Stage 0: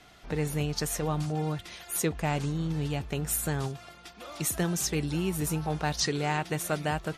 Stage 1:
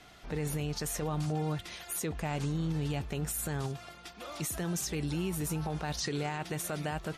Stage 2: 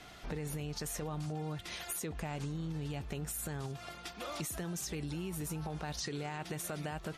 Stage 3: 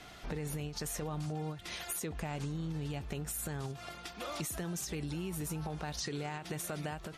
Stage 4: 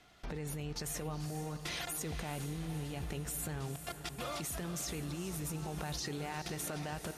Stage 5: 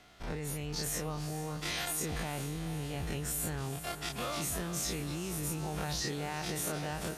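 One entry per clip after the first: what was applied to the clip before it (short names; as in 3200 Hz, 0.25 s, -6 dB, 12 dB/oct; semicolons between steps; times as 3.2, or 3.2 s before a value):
limiter -25.5 dBFS, peak gain reduction 10 dB
compressor 6:1, threshold -39 dBFS, peak gain reduction 9.5 dB; gain +2.5 dB
ending taper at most 130 dB/s; gain +1 dB
level quantiser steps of 23 dB; diffused feedback echo 0.457 s, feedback 60%, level -10 dB; gain +6 dB
spectral dilation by 60 ms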